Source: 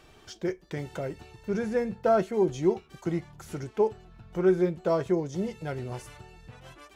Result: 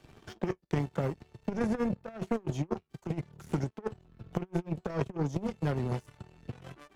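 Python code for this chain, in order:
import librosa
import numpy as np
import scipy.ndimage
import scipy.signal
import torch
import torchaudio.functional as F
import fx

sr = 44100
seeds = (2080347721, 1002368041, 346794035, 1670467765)

y = fx.rattle_buzz(x, sr, strikes_db=-30.0, level_db=-36.0)
y = fx.peak_eq(y, sr, hz=150.0, db=10.0, octaves=2.2)
y = fx.over_compress(y, sr, threshold_db=-24.0, ratio=-0.5)
y = fx.power_curve(y, sr, exponent=2.0)
y = fx.band_squash(y, sr, depth_pct=70)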